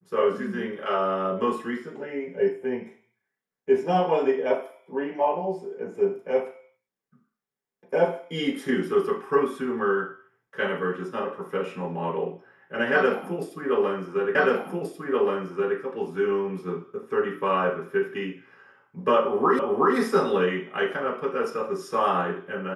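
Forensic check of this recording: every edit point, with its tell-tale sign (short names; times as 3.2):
14.35 repeat of the last 1.43 s
19.59 repeat of the last 0.37 s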